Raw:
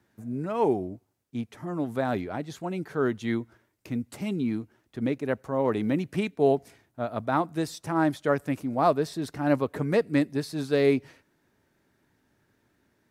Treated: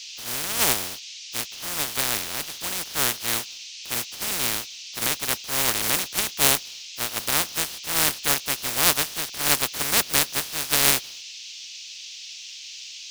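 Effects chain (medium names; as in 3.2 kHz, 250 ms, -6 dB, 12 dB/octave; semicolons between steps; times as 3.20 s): spectral contrast reduction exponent 0.11; band noise 2.5–6.4 kHz -42 dBFS; trim +2.5 dB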